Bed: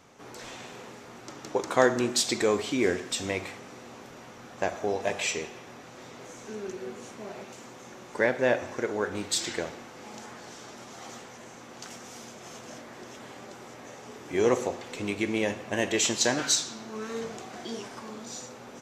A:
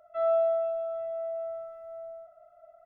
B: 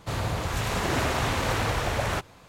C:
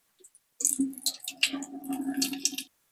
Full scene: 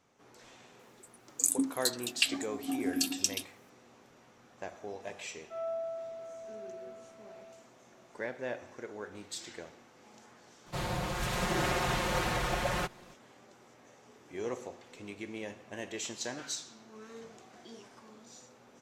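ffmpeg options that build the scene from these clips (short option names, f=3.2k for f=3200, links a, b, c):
-filter_complex "[0:a]volume=-13.5dB[a];[2:a]aecho=1:1:5.6:0.97[b];[3:a]atrim=end=2.91,asetpts=PTS-STARTPTS,volume=-2dB,afade=t=in:d=0.004:c=hsin,afade=t=out:st=2.906:d=0.004:c=hsin,adelay=790[c];[1:a]atrim=end=2.85,asetpts=PTS-STARTPTS,volume=-11.5dB,afade=t=in:d=0.004:c=hsin,afade=t=out:st=2.846:d=0.004:c=hsin,adelay=5360[d];[b]atrim=end=2.48,asetpts=PTS-STARTPTS,volume=-7dB,afade=t=in:d=0.004:c=hsin,afade=t=out:st=2.476:d=0.004:c=hsin,adelay=470106S[e];[a][c][d][e]amix=inputs=4:normalize=0"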